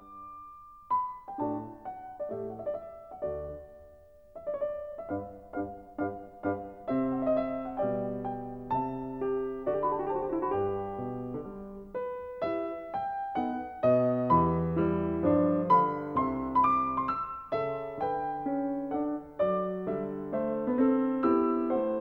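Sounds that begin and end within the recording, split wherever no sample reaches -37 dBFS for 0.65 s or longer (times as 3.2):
0.91–3.56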